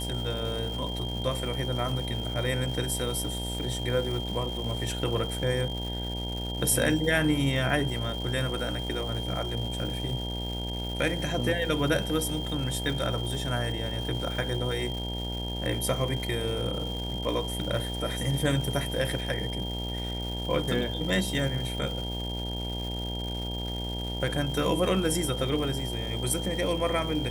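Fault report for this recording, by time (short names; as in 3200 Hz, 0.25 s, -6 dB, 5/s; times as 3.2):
buzz 60 Hz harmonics 16 -34 dBFS
crackle 480/s -36 dBFS
tone 3200 Hz -36 dBFS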